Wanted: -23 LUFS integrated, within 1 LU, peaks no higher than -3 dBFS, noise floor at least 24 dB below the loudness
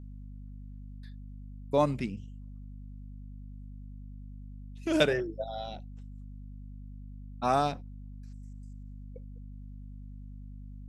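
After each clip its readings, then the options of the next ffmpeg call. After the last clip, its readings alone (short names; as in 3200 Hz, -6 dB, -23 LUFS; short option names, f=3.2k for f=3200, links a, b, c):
hum 50 Hz; harmonics up to 250 Hz; hum level -42 dBFS; loudness -30.5 LUFS; peak -10.5 dBFS; loudness target -23.0 LUFS
-> -af "bandreject=f=50:t=h:w=4,bandreject=f=100:t=h:w=4,bandreject=f=150:t=h:w=4,bandreject=f=200:t=h:w=4,bandreject=f=250:t=h:w=4"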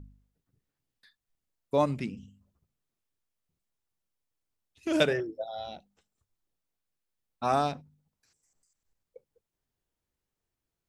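hum none; loudness -30.0 LUFS; peak -11.0 dBFS; loudness target -23.0 LUFS
-> -af "volume=7dB"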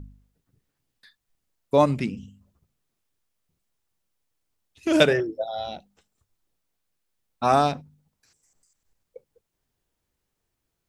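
loudness -23.5 LUFS; peak -4.0 dBFS; noise floor -80 dBFS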